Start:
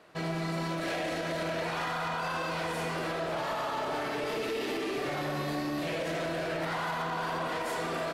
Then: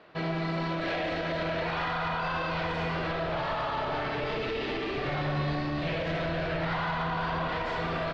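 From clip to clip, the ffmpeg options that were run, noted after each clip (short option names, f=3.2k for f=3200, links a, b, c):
-af "asubboost=boost=5.5:cutoff=120,lowpass=f=4.3k:w=0.5412,lowpass=f=4.3k:w=1.3066,volume=2.5dB"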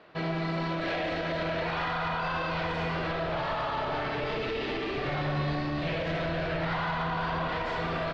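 -af anull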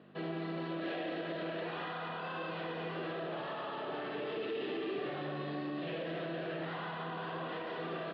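-filter_complex "[0:a]asplit=2[a][b];[b]asoftclip=type=tanh:threshold=-30.5dB,volume=-8dB[c];[a][c]amix=inputs=2:normalize=0,aeval=exprs='val(0)+0.0112*(sin(2*PI*50*n/s)+sin(2*PI*2*50*n/s)/2+sin(2*PI*3*50*n/s)/3+sin(2*PI*4*50*n/s)/4+sin(2*PI*5*50*n/s)/5)':c=same,highpass=f=190:w=0.5412,highpass=f=190:w=1.3066,equalizer=f=240:t=q:w=4:g=-5,equalizer=f=360:t=q:w=4:g=4,equalizer=f=640:t=q:w=4:g=-4,equalizer=f=930:t=q:w=4:g=-8,equalizer=f=1.4k:t=q:w=4:g=-6,equalizer=f=2.2k:t=q:w=4:g=-10,lowpass=f=3.4k:w=0.5412,lowpass=f=3.4k:w=1.3066,volume=-6.5dB"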